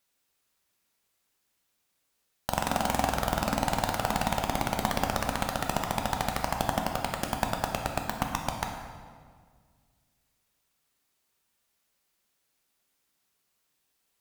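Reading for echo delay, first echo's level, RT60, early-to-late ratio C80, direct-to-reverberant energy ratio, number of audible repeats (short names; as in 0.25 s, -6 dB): none, none, 1.8 s, 6.0 dB, 2.0 dB, none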